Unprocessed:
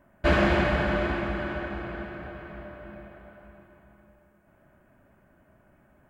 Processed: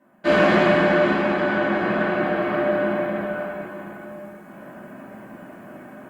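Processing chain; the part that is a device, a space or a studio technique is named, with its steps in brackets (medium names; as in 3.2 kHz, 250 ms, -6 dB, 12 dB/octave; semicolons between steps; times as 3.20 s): far-field microphone of a smart speaker (reverberation RT60 0.75 s, pre-delay 3 ms, DRR -6.5 dB; high-pass 150 Hz 24 dB/octave; level rider gain up to 16.5 dB; trim -3.5 dB; Opus 48 kbps 48 kHz)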